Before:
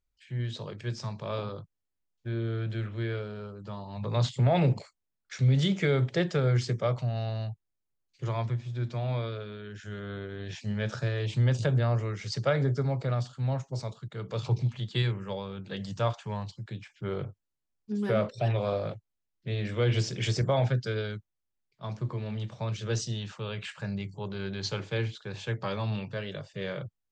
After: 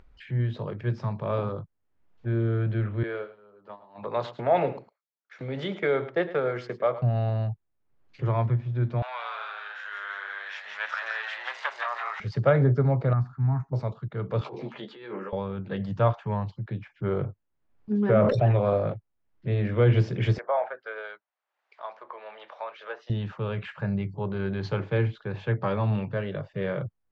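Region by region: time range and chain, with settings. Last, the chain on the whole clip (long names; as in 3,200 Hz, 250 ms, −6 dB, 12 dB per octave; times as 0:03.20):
0:03.03–0:07.02: noise gate −37 dBFS, range −19 dB + high-pass filter 420 Hz + single-tap delay 106 ms −15 dB
0:09.02–0:12.20: leveller curve on the samples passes 2 + high-pass filter 1,000 Hz 24 dB per octave + echo with shifted repeats 170 ms, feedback 54%, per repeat +99 Hz, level −3.5 dB
0:13.13–0:13.73: high-shelf EQ 4,700 Hz −11 dB + phaser with its sweep stopped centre 1,300 Hz, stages 4
0:14.41–0:15.33: high-pass filter 270 Hz 24 dB per octave + compressor whose output falls as the input rises −44 dBFS + double-tracking delay 14 ms −6 dB
0:18.10–0:18.52: parametric band 4,200 Hz −4.5 dB 0.94 octaves + level that may fall only so fast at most 26 dB per second
0:20.38–0:23.10: treble cut that deepens with the level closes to 1,700 Hz, closed at −25 dBFS + high-pass filter 630 Hz 24 dB per octave
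whole clip: low-pass filter 1,700 Hz 12 dB per octave; upward compression, threshold −44 dBFS; level +6 dB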